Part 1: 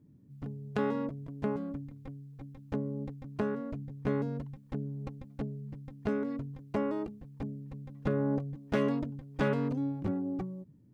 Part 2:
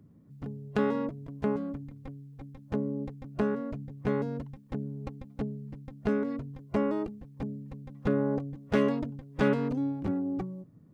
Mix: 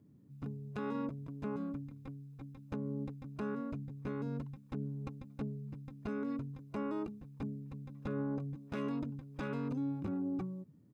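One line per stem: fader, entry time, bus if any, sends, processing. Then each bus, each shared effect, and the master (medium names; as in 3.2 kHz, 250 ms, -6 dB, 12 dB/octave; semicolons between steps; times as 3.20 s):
-1.5 dB, 0.00 s, no send, none
-12.5 dB, 0.8 ms, no send, none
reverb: none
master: bass shelf 72 Hz -11 dB; peak limiter -30 dBFS, peak gain reduction 11.5 dB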